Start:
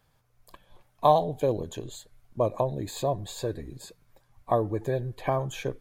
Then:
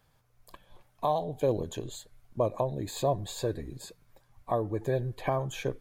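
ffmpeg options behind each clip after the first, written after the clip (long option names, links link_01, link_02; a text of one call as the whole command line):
ffmpeg -i in.wav -af "alimiter=limit=-16.5dB:level=0:latency=1:release=468" out.wav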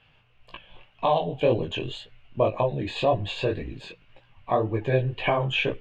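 ffmpeg -i in.wav -af "lowpass=frequency=2800:width_type=q:width=9.9,flanger=delay=17:depth=6.4:speed=1.9,volume=8dB" out.wav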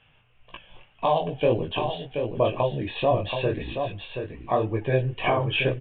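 ffmpeg -i in.wav -af "aecho=1:1:728:0.473,aresample=8000,aresample=44100" out.wav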